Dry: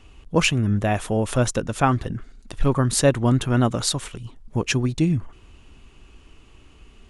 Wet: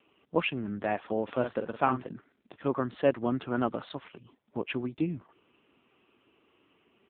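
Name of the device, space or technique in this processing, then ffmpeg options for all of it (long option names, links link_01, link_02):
telephone: -filter_complex "[0:a]asplit=3[link_01][link_02][link_03];[link_01]afade=type=out:start_time=1.27:duration=0.02[link_04];[link_02]asplit=2[link_05][link_06];[link_06]adelay=47,volume=-8dB[link_07];[link_05][link_07]amix=inputs=2:normalize=0,afade=type=in:start_time=1.27:duration=0.02,afade=type=out:start_time=2.05:duration=0.02[link_08];[link_03]afade=type=in:start_time=2.05:duration=0.02[link_09];[link_04][link_08][link_09]amix=inputs=3:normalize=0,highpass=260,lowpass=3000,volume=-5.5dB" -ar 8000 -c:a libopencore_amrnb -b:a 6700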